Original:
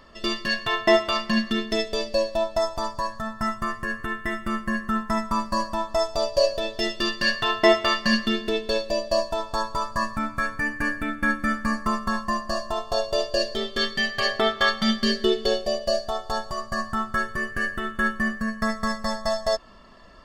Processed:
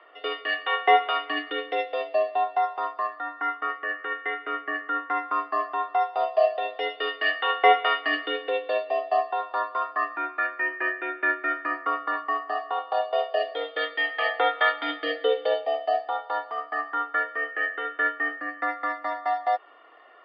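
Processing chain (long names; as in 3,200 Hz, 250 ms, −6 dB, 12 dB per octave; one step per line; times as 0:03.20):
single-sideband voice off tune +75 Hz 330–3,000 Hz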